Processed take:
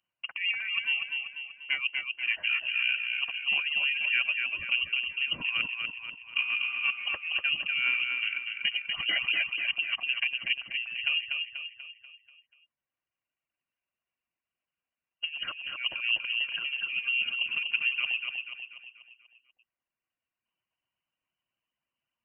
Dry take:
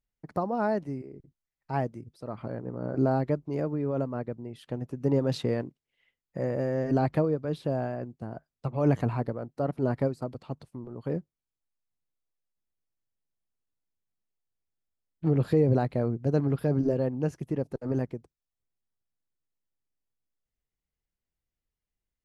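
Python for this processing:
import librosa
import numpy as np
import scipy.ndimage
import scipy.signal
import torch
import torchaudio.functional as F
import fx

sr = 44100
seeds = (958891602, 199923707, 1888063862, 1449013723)

p1 = fx.self_delay(x, sr, depth_ms=0.06)
p2 = fx.highpass(p1, sr, hz=230.0, slope=6)
p3 = fx.notch_comb(p2, sr, f0_hz=430.0)
p4 = fx.over_compress(p3, sr, threshold_db=-34.0, ratio=-0.5)
p5 = fx.dereverb_blind(p4, sr, rt60_s=1.5)
p6 = p5 + fx.echo_feedback(p5, sr, ms=243, feedback_pct=48, wet_db=-4.5, dry=0)
p7 = fx.freq_invert(p6, sr, carrier_hz=3000)
y = p7 * 10.0 ** (6.0 / 20.0)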